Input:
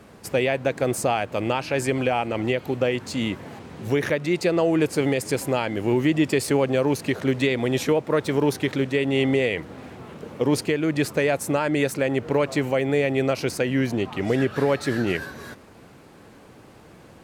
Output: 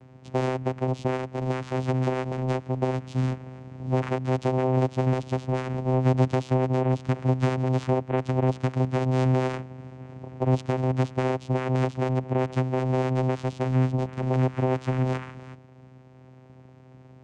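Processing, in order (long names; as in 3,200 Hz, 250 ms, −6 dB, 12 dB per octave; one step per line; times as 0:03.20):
dynamic equaliser 2,200 Hz, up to +4 dB, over −38 dBFS, Q 0.93
channel vocoder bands 4, saw 129 Hz
level −2 dB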